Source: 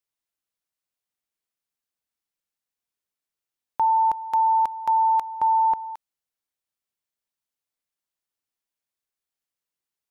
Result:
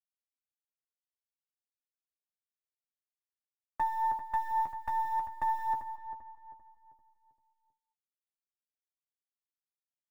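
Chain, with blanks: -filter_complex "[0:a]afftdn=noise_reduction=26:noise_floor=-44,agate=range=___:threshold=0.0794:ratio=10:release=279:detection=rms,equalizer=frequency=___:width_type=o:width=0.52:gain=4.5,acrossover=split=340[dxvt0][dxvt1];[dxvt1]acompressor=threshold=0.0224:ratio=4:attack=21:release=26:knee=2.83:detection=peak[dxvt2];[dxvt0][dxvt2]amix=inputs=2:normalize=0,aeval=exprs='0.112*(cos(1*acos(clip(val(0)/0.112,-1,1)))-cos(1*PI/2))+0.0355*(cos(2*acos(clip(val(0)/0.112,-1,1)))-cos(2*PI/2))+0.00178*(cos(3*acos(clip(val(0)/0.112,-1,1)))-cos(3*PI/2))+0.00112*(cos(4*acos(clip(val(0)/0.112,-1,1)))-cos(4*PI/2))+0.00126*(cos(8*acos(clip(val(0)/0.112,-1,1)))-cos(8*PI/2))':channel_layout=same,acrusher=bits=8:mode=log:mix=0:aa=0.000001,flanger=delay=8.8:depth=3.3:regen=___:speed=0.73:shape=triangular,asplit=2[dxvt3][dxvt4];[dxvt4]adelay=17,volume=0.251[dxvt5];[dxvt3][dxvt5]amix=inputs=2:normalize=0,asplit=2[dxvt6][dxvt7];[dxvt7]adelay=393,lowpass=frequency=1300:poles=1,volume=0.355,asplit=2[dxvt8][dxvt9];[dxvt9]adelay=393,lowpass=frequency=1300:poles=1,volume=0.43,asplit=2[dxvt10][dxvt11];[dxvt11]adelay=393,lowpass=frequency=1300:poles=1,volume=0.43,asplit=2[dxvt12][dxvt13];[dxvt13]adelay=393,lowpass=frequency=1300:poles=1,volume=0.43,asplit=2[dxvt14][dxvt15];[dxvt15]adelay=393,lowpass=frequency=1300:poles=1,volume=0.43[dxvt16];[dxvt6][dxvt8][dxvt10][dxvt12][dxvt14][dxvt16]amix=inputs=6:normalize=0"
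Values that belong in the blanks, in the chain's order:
0.398, 93, 26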